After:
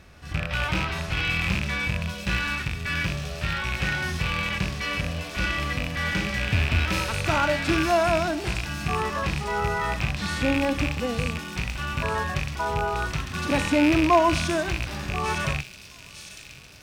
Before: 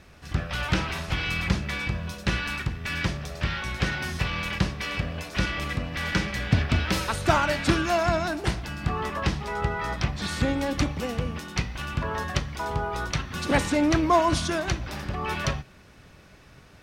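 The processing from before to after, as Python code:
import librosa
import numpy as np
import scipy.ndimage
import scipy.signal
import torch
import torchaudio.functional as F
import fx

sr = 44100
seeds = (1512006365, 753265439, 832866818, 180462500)

p1 = fx.rattle_buzz(x, sr, strikes_db=-29.0, level_db=-13.0)
p2 = np.clip(p1, -10.0 ** (-22.0 / 20.0), 10.0 ** (-22.0 / 20.0))
p3 = p1 + (p2 * librosa.db_to_amplitude(-4.0))
p4 = fx.echo_wet_highpass(p3, sr, ms=906, feedback_pct=61, hz=4700.0, wet_db=-4.5)
y = fx.hpss(p4, sr, part='percussive', gain_db=-12)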